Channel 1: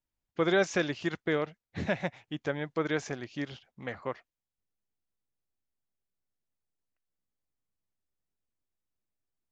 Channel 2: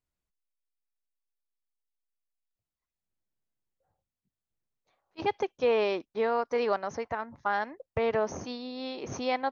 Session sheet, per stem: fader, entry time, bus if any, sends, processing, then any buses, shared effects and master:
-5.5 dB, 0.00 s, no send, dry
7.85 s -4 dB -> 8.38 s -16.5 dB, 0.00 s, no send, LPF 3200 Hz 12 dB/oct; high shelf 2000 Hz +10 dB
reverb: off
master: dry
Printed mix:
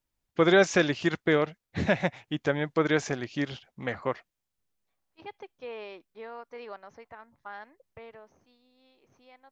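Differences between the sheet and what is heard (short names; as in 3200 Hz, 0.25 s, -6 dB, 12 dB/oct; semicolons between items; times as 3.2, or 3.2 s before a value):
stem 1 -5.5 dB -> +5.5 dB; stem 2 -4.0 dB -> -15.5 dB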